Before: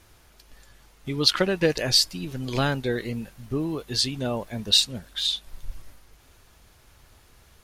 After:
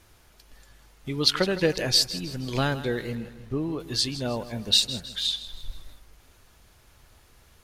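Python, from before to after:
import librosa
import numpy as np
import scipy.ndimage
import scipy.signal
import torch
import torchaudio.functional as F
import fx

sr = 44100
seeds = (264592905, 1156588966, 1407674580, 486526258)

p1 = fx.lowpass(x, sr, hz=4000.0, slope=6, at=(3.15, 3.8))
p2 = p1 + fx.echo_feedback(p1, sr, ms=159, feedback_pct=46, wet_db=-14.5, dry=0)
y = p2 * 10.0 ** (-1.5 / 20.0)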